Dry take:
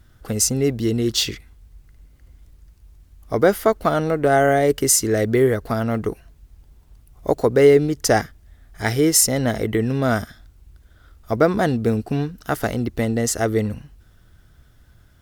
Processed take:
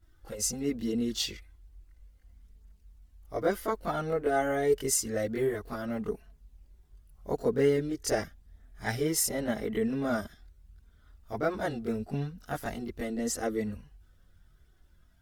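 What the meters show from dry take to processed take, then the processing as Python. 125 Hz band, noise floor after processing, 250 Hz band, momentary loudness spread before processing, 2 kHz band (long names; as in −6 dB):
−14.5 dB, −62 dBFS, −10.5 dB, 12 LU, −11.5 dB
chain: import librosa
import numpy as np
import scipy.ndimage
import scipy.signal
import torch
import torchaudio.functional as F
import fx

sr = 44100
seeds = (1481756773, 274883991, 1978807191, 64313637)

y = fx.chorus_voices(x, sr, voices=4, hz=0.14, base_ms=23, depth_ms=3.0, mix_pct=70)
y = F.gain(torch.from_numpy(y), -9.0).numpy()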